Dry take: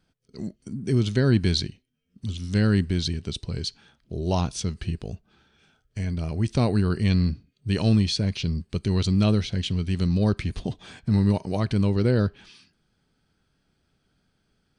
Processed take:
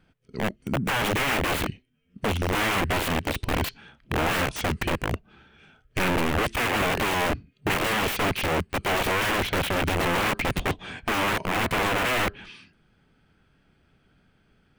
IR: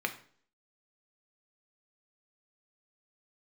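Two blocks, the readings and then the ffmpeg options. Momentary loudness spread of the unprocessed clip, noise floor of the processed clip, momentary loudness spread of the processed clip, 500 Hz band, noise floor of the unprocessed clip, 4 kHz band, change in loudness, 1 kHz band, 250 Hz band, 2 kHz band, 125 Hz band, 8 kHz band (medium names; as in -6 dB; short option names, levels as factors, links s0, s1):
13 LU, -65 dBFS, 8 LU, +2.0 dB, -72 dBFS, +3.0 dB, -0.5 dB, +12.0 dB, -5.5 dB, +13.0 dB, -8.5 dB, +5.0 dB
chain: -af "aeval=exprs='(mod(20*val(0)+1,2)-1)/20':c=same,highshelf=f=3500:t=q:w=1.5:g=-8,volume=2.24"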